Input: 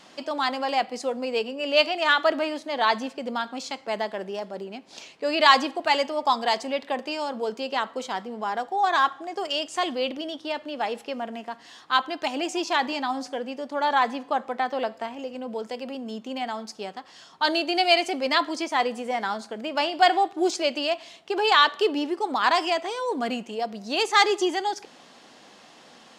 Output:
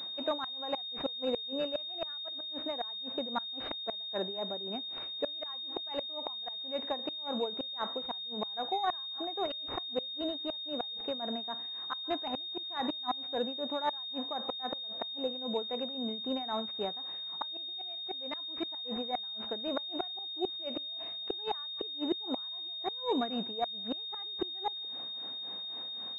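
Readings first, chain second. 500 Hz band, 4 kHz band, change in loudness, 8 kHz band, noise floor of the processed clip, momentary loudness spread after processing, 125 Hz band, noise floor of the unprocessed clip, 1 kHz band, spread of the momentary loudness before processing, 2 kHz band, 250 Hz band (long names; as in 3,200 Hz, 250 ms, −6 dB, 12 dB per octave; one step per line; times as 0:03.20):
−10.5 dB, −4.5 dB, −10.5 dB, below −30 dB, −41 dBFS, 3 LU, can't be measured, −51 dBFS, −15.0 dB, 14 LU, −22.5 dB, −8.0 dB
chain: amplitude tremolo 3.8 Hz, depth 82%
gate with flip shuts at −20 dBFS, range −33 dB
switching amplifier with a slow clock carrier 3,700 Hz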